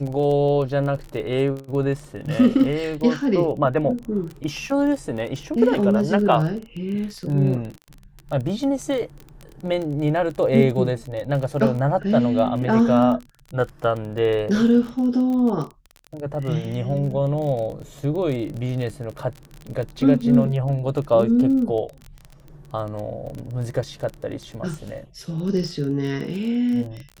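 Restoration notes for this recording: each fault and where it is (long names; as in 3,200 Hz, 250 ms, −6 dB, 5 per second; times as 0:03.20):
surface crackle 29 per second −28 dBFS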